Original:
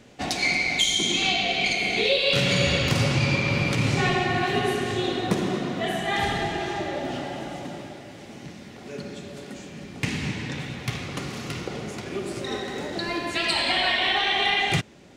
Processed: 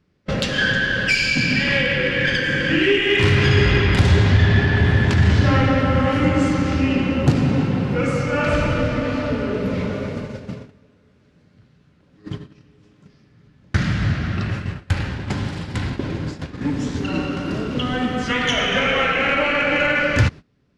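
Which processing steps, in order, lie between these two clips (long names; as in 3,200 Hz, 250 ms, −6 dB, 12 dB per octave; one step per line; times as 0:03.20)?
noise gate −33 dBFS, range −22 dB
low-shelf EQ 420 Hz +7.5 dB
in parallel at −5 dB: soft clipping −16.5 dBFS, distortion −13 dB
on the sum: speed change −27%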